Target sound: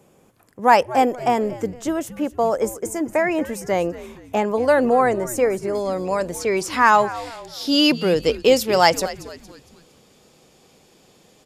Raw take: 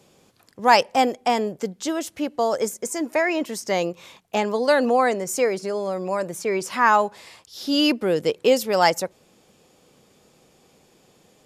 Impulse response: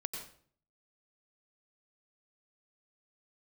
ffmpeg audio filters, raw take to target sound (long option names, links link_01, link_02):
-filter_complex "[0:a]asetnsamples=nb_out_samples=441:pad=0,asendcmd='5.75 equalizer g 2.5',equalizer=frequency=4300:width=0.99:gain=-12,asplit=5[link_01][link_02][link_03][link_04][link_05];[link_02]adelay=230,afreqshift=-120,volume=-16dB[link_06];[link_03]adelay=460,afreqshift=-240,volume=-23.7dB[link_07];[link_04]adelay=690,afreqshift=-360,volume=-31.5dB[link_08];[link_05]adelay=920,afreqshift=-480,volume=-39.2dB[link_09];[link_01][link_06][link_07][link_08][link_09]amix=inputs=5:normalize=0,volume=2.5dB"